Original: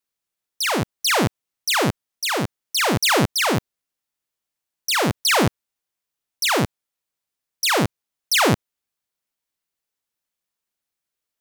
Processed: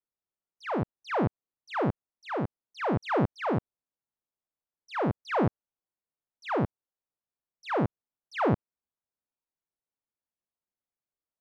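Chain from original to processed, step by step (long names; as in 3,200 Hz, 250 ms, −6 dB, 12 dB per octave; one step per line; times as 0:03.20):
low-pass filter 1,100 Hz 12 dB per octave
level −6 dB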